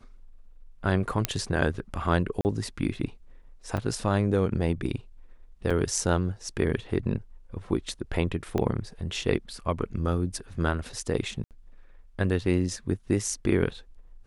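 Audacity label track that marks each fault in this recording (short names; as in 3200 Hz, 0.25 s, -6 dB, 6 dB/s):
1.250000	1.250000	pop -7 dBFS
2.410000	2.450000	gap 39 ms
3.770000	3.770000	gap 4.4 ms
5.700000	5.710000	gap 5.6 ms
8.580000	8.580000	gap 2.1 ms
11.440000	11.510000	gap 68 ms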